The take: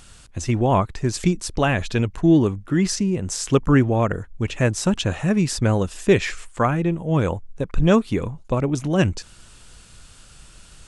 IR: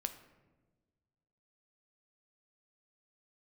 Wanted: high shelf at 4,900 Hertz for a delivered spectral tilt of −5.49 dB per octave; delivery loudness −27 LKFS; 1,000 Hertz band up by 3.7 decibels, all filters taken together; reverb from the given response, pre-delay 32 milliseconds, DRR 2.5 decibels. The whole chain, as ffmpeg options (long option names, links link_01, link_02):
-filter_complex "[0:a]equalizer=frequency=1000:width_type=o:gain=5,highshelf=frequency=4900:gain=-7,asplit=2[link_01][link_02];[1:a]atrim=start_sample=2205,adelay=32[link_03];[link_02][link_03]afir=irnorm=-1:irlink=0,volume=-2dB[link_04];[link_01][link_04]amix=inputs=2:normalize=0,volume=-8dB"